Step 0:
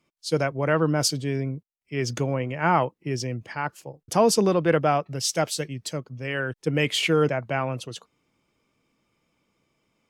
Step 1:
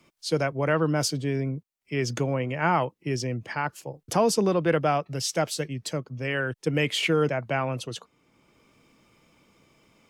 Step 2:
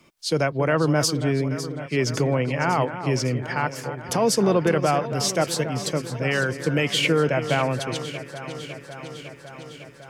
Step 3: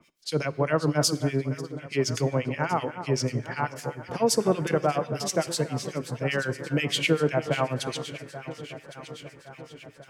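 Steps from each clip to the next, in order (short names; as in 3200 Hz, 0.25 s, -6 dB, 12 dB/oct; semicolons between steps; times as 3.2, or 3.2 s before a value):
three-band squash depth 40%; gain -1.5 dB
limiter -16 dBFS, peak gain reduction 7 dB; on a send: echo with dull and thin repeats by turns 0.277 s, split 1900 Hz, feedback 84%, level -11 dB; on the sum: gain +4.5 dB
harmonic tremolo 8 Hz, depth 100%, crossover 1700 Hz; reverb, pre-delay 3 ms, DRR 17.5 dB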